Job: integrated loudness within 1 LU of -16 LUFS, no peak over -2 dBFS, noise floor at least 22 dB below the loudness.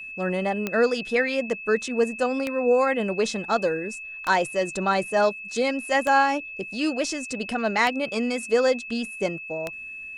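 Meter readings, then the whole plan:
clicks 6; steady tone 2600 Hz; tone level -35 dBFS; loudness -24.5 LUFS; peak -8.0 dBFS; loudness target -16.0 LUFS
-> de-click; notch 2600 Hz, Q 30; gain +8.5 dB; limiter -2 dBFS

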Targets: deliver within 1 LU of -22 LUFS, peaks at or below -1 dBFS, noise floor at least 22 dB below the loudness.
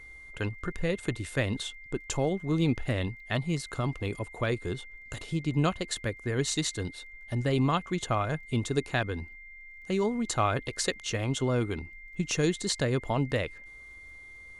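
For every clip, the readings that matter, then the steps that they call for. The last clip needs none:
ticks 17/s; steady tone 2100 Hz; tone level -46 dBFS; loudness -30.5 LUFS; peak -12.5 dBFS; loudness target -22.0 LUFS
-> de-click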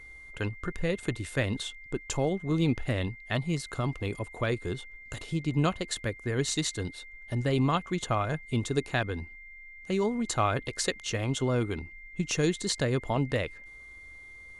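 ticks 0/s; steady tone 2100 Hz; tone level -46 dBFS
-> notch 2100 Hz, Q 30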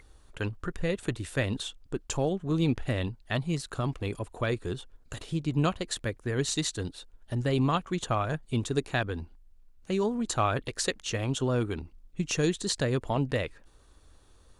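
steady tone none; loudness -30.5 LUFS; peak -12.5 dBFS; loudness target -22.0 LUFS
-> gain +8.5 dB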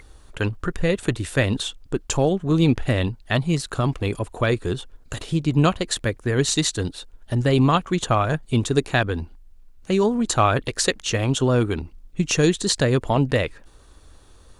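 loudness -22.0 LUFS; peak -4.0 dBFS; noise floor -50 dBFS

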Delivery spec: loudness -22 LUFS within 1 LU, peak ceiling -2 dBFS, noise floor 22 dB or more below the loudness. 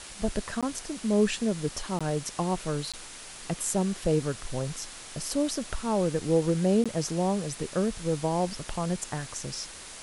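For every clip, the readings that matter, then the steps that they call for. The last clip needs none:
dropouts 4; longest dropout 16 ms; noise floor -44 dBFS; noise floor target -52 dBFS; loudness -29.5 LUFS; peak -13.0 dBFS; loudness target -22.0 LUFS
-> interpolate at 0.61/1.99/2.92/6.84, 16 ms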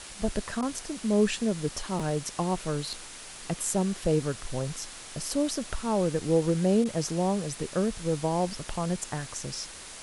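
dropouts 0; noise floor -44 dBFS; noise floor target -52 dBFS
-> denoiser 8 dB, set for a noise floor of -44 dBFS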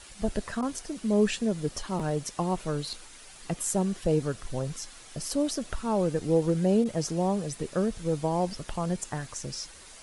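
noise floor -49 dBFS; noise floor target -52 dBFS
-> denoiser 6 dB, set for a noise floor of -49 dBFS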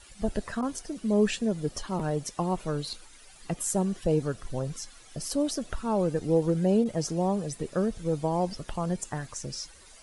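noise floor -52 dBFS; loudness -29.5 LUFS; peak -13.0 dBFS; loudness target -22.0 LUFS
-> gain +7.5 dB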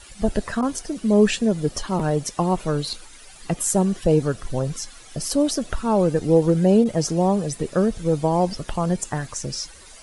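loudness -22.0 LUFS; peak -5.5 dBFS; noise floor -45 dBFS

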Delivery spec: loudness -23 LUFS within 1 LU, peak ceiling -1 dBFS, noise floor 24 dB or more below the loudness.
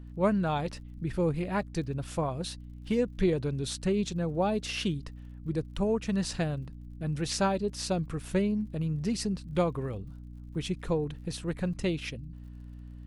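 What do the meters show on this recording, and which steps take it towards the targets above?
ticks 42/s; hum 60 Hz; harmonics up to 300 Hz; hum level -42 dBFS; loudness -31.5 LUFS; peak -14.0 dBFS; loudness target -23.0 LUFS
-> de-click; notches 60/120/180/240/300 Hz; gain +8.5 dB

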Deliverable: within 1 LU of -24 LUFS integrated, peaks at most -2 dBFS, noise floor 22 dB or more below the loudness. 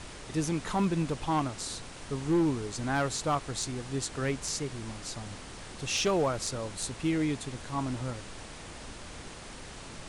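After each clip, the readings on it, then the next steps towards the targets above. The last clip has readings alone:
clipped 0.5%; flat tops at -21.0 dBFS; noise floor -45 dBFS; noise floor target -54 dBFS; loudness -32.0 LUFS; peak -21.0 dBFS; loudness target -24.0 LUFS
-> clip repair -21 dBFS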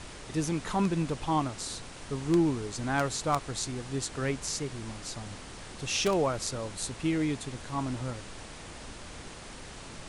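clipped 0.0%; noise floor -45 dBFS; noise floor target -54 dBFS
-> noise print and reduce 9 dB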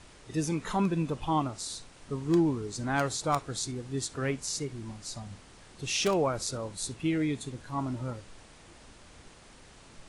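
noise floor -54 dBFS; loudness -31.5 LUFS; peak -12.5 dBFS; loudness target -24.0 LUFS
-> gain +7.5 dB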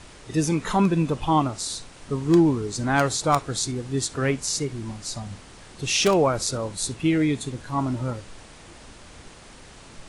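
loudness -24.0 LUFS; peak -5.0 dBFS; noise floor -47 dBFS

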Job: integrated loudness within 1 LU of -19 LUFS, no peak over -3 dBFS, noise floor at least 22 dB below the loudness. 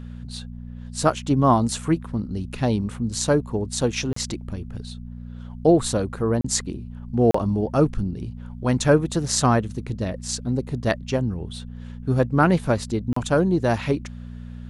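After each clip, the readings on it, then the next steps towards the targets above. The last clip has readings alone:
dropouts 4; longest dropout 34 ms; hum 60 Hz; harmonics up to 240 Hz; hum level -33 dBFS; loudness -23.0 LUFS; peak -4.0 dBFS; loudness target -19.0 LUFS
-> interpolate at 4.13/6.41/7.31/13.13, 34 ms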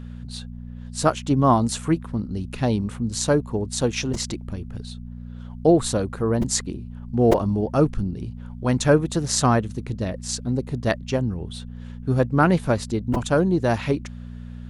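dropouts 0; hum 60 Hz; harmonics up to 240 Hz; hum level -33 dBFS
-> de-hum 60 Hz, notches 4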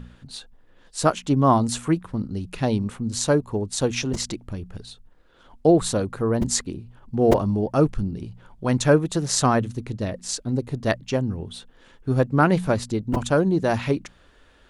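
hum none; loudness -23.0 LUFS; peak -3.5 dBFS; loudness target -19.0 LUFS
-> gain +4 dB; limiter -3 dBFS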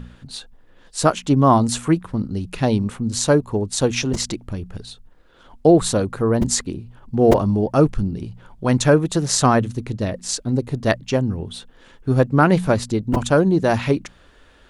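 loudness -19.5 LUFS; peak -3.0 dBFS; noise floor -51 dBFS

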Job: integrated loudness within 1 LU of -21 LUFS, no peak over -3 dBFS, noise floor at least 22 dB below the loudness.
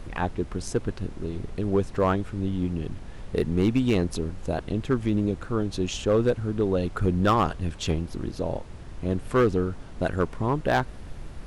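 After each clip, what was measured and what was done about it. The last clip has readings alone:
clipped 0.6%; flat tops at -14.5 dBFS; noise floor -41 dBFS; noise floor target -49 dBFS; loudness -27.0 LUFS; peak -14.5 dBFS; loudness target -21.0 LUFS
-> clip repair -14.5 dBFS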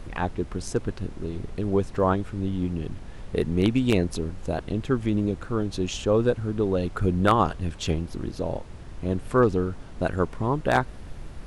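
clipped 0.0%; noise floor -41 dBFS; noise floor target -49 dBFS
-> noise print and reduce 8 dB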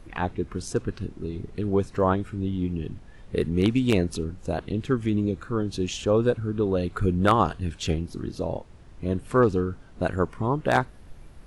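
noise floor -48 dBFS; noise floor target -49 dBFS
-> noise print and reduce 6 dB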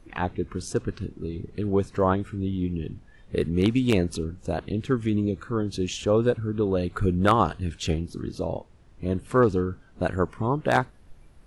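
noise floor -53 dBFS; loudness -26.5 LUFS; peak -5.5 dBFS; loudness target -21.0 LUFS
-> gain +5.5 dB; limiter -3 dBFS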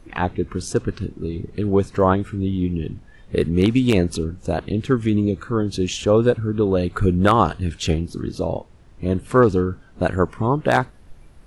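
loudness -21.0 LUFS; peak -3.0 dBFS; noise floor -47 dBFS

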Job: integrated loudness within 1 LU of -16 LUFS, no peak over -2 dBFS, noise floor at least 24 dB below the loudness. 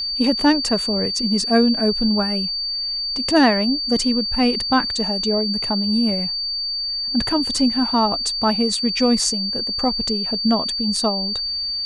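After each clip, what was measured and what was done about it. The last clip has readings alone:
steady tone 4600 Hz; tone level -22 dBFS; loudness -19.0 LUFS; peak -4.0 dBFS; loudness target -16.0 LUFS
-> notch 4600 Hz, Q 30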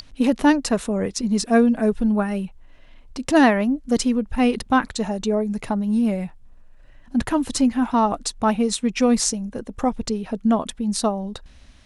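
steady tone none; loudness -21.5 LUFS; peak -4.5 dBFS; loudness target -16.0 LUFS
-> gain +5.5 dB; limiter -2 dBFS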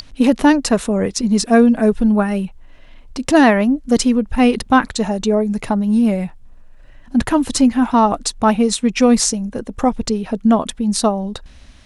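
loudness -16.0 LUFS; peak -2.0 dBFS; noise floor -42 dBFS

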